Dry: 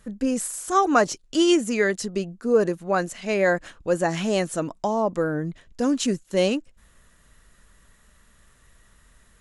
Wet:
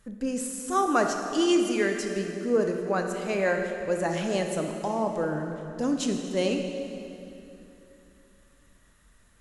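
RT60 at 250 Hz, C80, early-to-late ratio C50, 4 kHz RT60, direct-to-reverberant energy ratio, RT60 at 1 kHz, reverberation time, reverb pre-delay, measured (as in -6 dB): 3.5 s, 5.5 dB, 4.5 dB, 2.4 s, 3.5 dB, 2.7 s, 2.9 s, 23 ms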